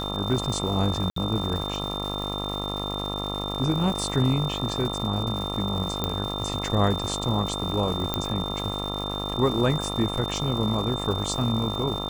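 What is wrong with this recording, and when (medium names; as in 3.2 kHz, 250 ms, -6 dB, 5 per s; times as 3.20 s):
buzz 50 Hz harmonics 27 -32 dBFS
crackle 310 per s -32 dBFS
whine 3.6 kHz -32 dBFS
1.10–1.16 s: dropout 63 ms
6.04 s: pop -11 dBFS
8.14 s: pop -9 dBFS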